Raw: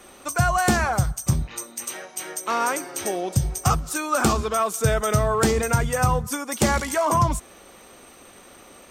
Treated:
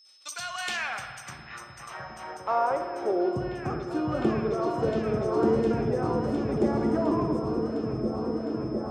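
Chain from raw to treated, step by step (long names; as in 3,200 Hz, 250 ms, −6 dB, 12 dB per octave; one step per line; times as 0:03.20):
noise gate −45 dBFS, range −21 dB
in parallel at −3 dB: brickwall limiter −19.5 dBFS, peak gain reduction 11.5 dB
on the sum: band-pass filter sweep 4,700 Hz → 330 Hz, 0:00.09–0:03.51
steady tone 5,200 Hz −55 dBFS
echo whose low-pass opens from repeat to repeat 708 ms, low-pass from 200 Hz, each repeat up 1 octave, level 0 dB
spring reverb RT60 1.9 s, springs 54 ms, chirp 35 ms, DRR 6 dB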